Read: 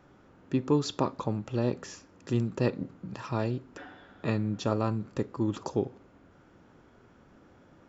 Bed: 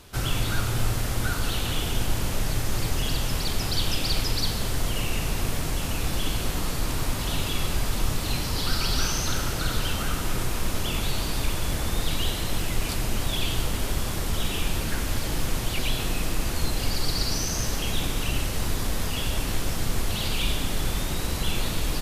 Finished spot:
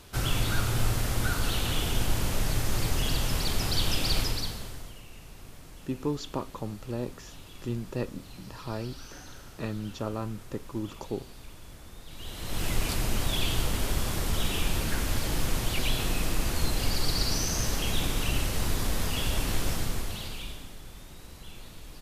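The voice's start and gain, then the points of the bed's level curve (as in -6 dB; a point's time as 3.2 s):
5.35 s, -5.0 dB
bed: 4.21 s -1.5 dB
5.02 s -20.5 dB
12.06 s -20.5 dB
12.66 s -1.5 dB
19.72 s -1.5 dB
20.81 s -19 dB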